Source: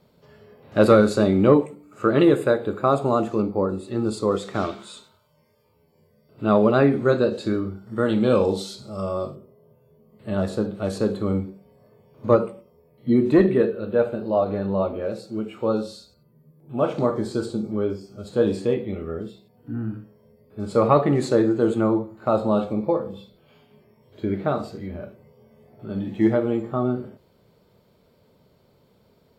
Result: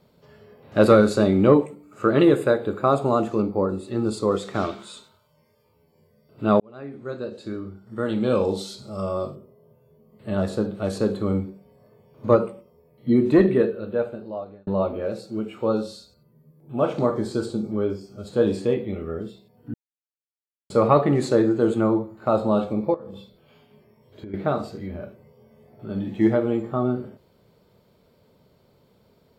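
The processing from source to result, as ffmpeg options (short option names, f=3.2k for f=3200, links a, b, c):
-filter_complex "[0:a]asettb=1/sr,asplit=3[a][b][c];[a]atrim=end=22.944[d];[b]atrim=start=22.94:end=24.34,asetpts=PTS-STARTPTS,afade=t=in:d=0.004:c=qsin,afade=t=out:st=1.396:d=0.004:c=qsin,acompressor=threshold=-33dB:ratio=16:attack=3.2:release=140:knee=1:detection=peak[e];[c]atrim=start=24.336[f];[d][e]acrossfade=d=0.004:c1=hsin:c2=qsin[g];[g][f]acrossfade=d=0.004:c1=qsin:c2=hsin,asplit=5[h][i][j][k][l];[h]atrim=end=6.6,asetpts=PTS-STARTPTS,afade=t=out:st=6.596:d=0.004:c=hsin[m];[i]atrim=start=6.6:end=14.67,asetpts=PTS-STARTPTS,afade=t=in:d=2.34,afade=t=out:st=6.97:d=1.1[n];[j]atrim=start=14.67:end=19.74,asetpts=PTS-STARTPTS,afade=t=in:d=0.004:c=hsin,afade=t=out:st=5.066:d=0.004:c=hsin[o];[k]atrim=start=19.74:end=20.7,asetpts=PTS-STARTPTS,volume=0[p];[l]atrim=start=20.7,asetpts=PTS-STARTPTS,afade=t=in:d=0.004:c=hsin[q];[m][n][o][p][q]concat=n=5:v=0:a=1"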